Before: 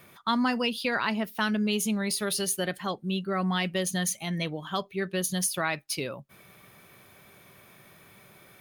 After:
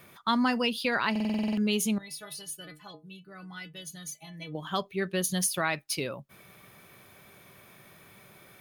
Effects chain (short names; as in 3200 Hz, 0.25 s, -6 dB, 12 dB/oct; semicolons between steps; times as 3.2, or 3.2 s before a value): 1.98–4.55 metallic resonator 150 Hz, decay 0.27 s, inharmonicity 0.008; stuck buffer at 1.11, samples 2048, times 9